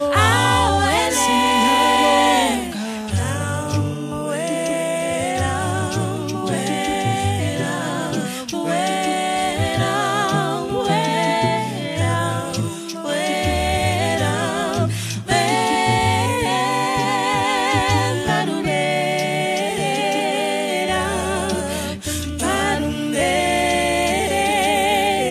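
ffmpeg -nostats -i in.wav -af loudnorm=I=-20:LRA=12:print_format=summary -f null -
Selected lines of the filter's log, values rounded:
Input Integrated:    -19.1 LUFS
Input True Peak:      -3.2 dBTP
Input LRA:             4.1 LU
Input Threshold:     -29.1 LUFS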